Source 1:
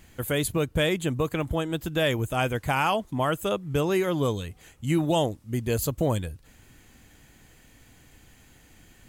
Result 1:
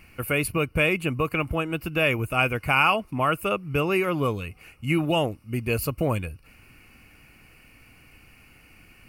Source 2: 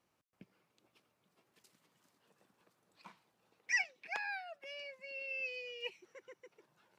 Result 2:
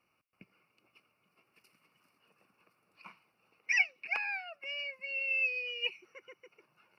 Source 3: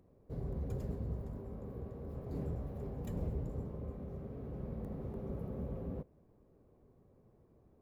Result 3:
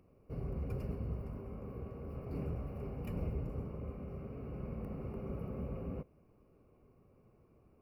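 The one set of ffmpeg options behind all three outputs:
ffmpeg -i in.wav -af "superequalizer=10b=2:12b=3.16:13b=0.316:15b=0.282" out.wav

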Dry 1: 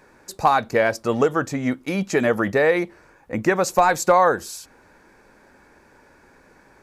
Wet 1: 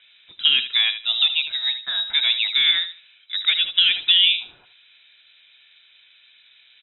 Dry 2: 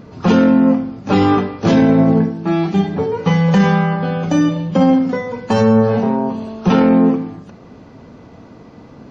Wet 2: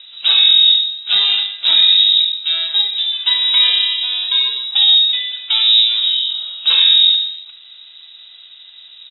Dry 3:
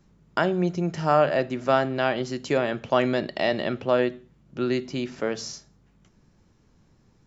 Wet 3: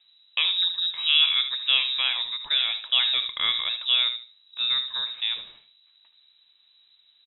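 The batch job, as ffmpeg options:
ffmpeg -i in.wav -filter_complex "[0:a]asplit=2[link_01][link_02];[link_02]adelay=76,lowpass=frequency=3100:poles=1,volume=-10dB,asplit=2[link_03][link_04];[link_04]adelay=76,lowpass=frequency=3100:poles=1,volume=0.23,asplit=2[link_05][link_06];[link_06]adelay=76,lowpass=frequency=3100:poles=1,volume=0.23[link_07];[link_01][link_03][link_05][link_07]amix=inputs=4:normalize=0,lowpass=frequency=3400:width_type=q:width=0.5098,lowpass=frequency=3400:width_type=q:width=0.6013,lowpass=frequency=3400:width_type=q:width=0.9,lowpass=frequency=3400:width_type=q:width=2.563,afreqshift=-4000,volume=-1dB" out.wav

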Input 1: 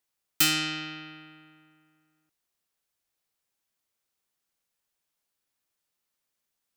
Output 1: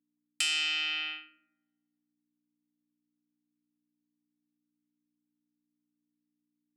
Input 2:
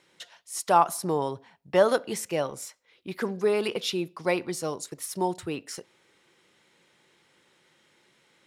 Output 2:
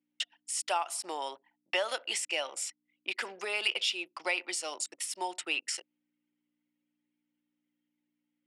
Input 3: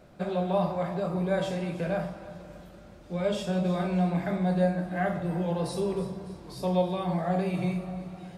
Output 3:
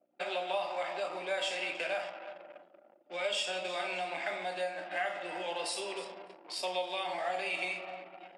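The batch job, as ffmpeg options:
ffmpeg -i in.wav -af "anlmdn=0.0398,tiltshelf=frequency=970:gain=-9.5,acompressor=threshold=-34dB:ratio=3,aeval=exprs='val(0)+0.000562*(sin(2*PI*60*n/s)+sin(2*PI*2*60*n/s)/2+sin(2*PI*3*60*n/s)/3+sin(2*PI*4*60*n/s)/4+sin(2*PI*5*60*n/s)/5)':channel_layout=same,highpass=frequency=360:width=0.5412,highpass=frequency=360:width=1.3066,equalizer=frequency=440:width_type=q:width=4:gain=-10,equalizer=frequency=1100:width_type=q:width=4:gain=-7,equalizer=frequency=1600:width_type=q:width=4:gain=-5,equalizer=frequency=2800:width_type=q:width=4:gain=5,equalizer=frequency=4000:width_type=q:width=4:gain=-7,equalizer=frequency=6200:width_type=q:width=4:gain=-8,lowpass=frequency=8400:width=0.5412,lowpass=frequency=8400:width=1.3066,volume=5dB" out.wav

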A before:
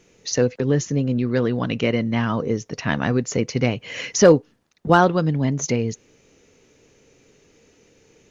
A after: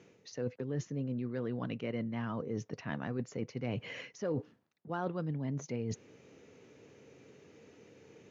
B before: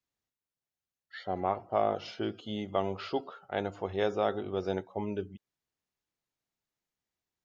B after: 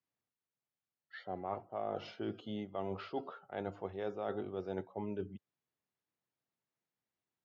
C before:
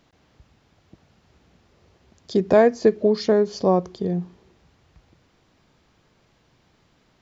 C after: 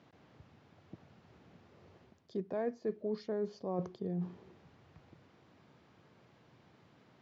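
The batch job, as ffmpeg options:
ffmpeg -i in.wav -af "highpass=frequency=91:width=0.5412,highpass=frequency=91:width=1.3066,aemphasis=mode=reproduction:type=75fm,areverse,acompressor=threshold=-34dB:ratio=5,areverse,volume=-1.5dB" out.wav

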